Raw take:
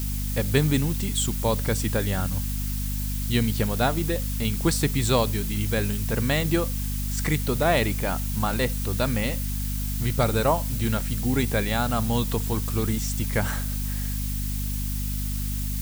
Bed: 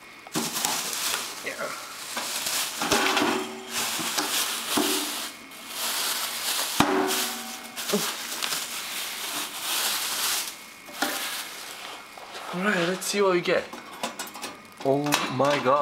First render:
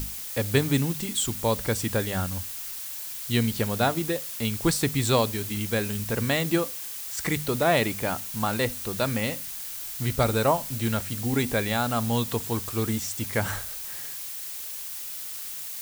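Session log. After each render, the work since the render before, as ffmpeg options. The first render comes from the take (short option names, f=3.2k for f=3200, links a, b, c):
-af "bandreject=f=50:t=h:w=6,bandreject=f=100:t=h:w=6,bandreject=f=150:t=h:w=6,bandreject=f=200:t=h:w=6,bandreject=f=250:t=h:w=6"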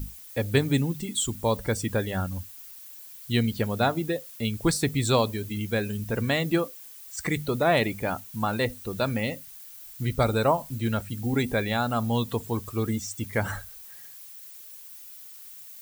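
-af "afftdn=nr=13:nf=-36"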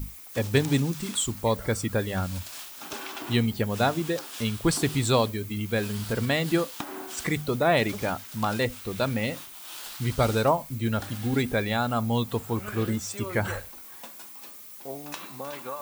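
-filter_complex "[1:a]volume=-15dB[a];[0:a][a]amix=inputs=2:normalize=0"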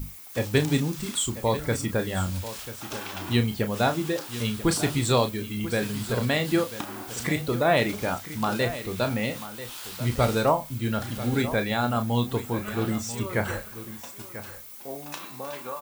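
-filter_complex "[0:a]asplit=2[a][b];[b]adelay=33,volume=-8.5dB[c];[a][c]amix=inputs=2:normalize=0,aecho=1:1:990:0.211"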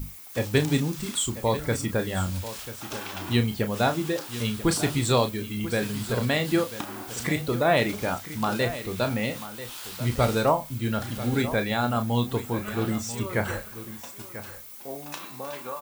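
-af anull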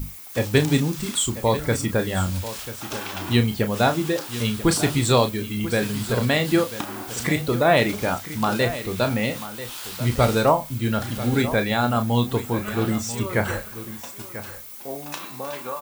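-af "volume=4dB"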